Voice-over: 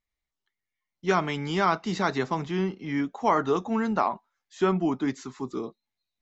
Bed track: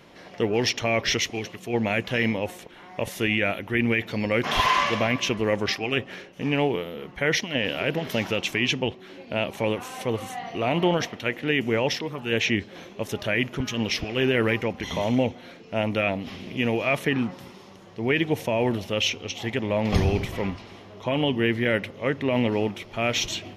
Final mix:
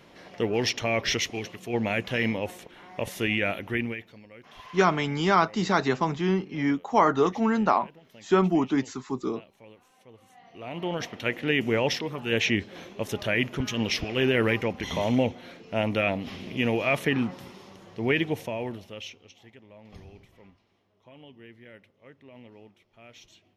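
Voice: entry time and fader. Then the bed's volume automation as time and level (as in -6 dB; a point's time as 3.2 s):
3.70 s, +2.5 dB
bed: 3.73 s -2.5 dB
4.26 s -25.5 dB
10.13 s -25.5 dB
11.24 s -1 dB
18.12 s -1 dB
19.65 s -26 dB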